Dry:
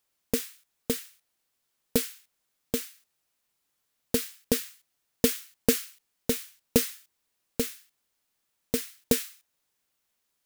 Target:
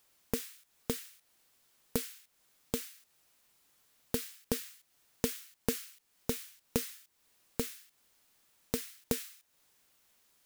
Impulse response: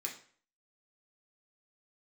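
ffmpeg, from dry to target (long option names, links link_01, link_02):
-af "acompressor=threshold=-47dB:ratio=2.5,volume=8.5dB"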